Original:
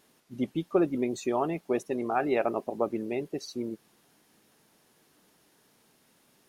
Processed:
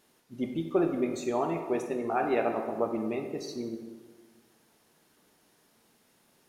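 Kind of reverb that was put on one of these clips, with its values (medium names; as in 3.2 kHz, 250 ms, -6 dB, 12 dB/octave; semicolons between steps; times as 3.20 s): plate-style reverb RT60 1.5 s, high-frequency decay 0.6×, DRR 3 dB; trim -2.5 dB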